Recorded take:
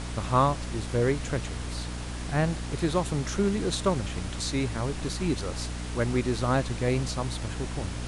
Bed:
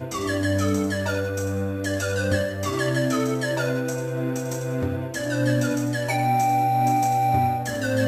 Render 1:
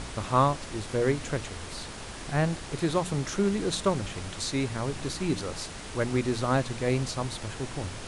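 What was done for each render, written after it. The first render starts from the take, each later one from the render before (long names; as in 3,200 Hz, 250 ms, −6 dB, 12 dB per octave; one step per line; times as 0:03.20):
hum removal 60 Hz, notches 5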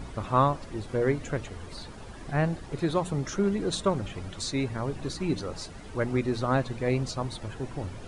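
broadband denoise 12 dB, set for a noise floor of −40 dBFS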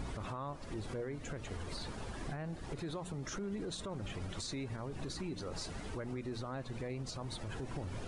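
downward compressor 10 to 1, threshold −33 dBFS, peak gain reduction 16 dB
brickwall limiter −32.5 dBFS, peak gain reduction 10 dB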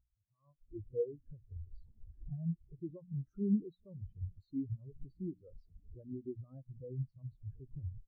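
automatic gain control gain up to 10 dB
every bin expanded away from the loudest bin 4 to 1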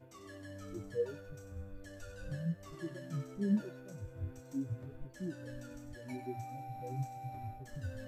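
mix in bed −26 dB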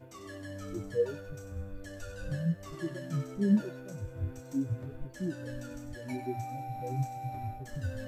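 level +6 dB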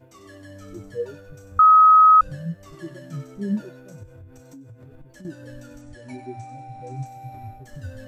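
0:01.59–0:02.21: beep over 1,270 Hz −8.5 dBFS
0:04.03–0:05.25: downward compressor 16 to 1, threshold −40 dBFS
0:05.81–0:07.06: linear-phase brick-wall low-pass 11,000 Hz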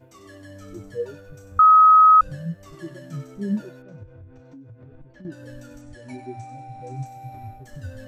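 0:03.82–0:05.32: high-frequency loss of the air 250 metres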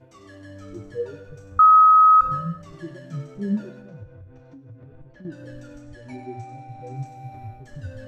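high-frequency loss of the air 58 metres
reverb whose tail is shaped and stops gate 420 ms falling, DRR 11 dB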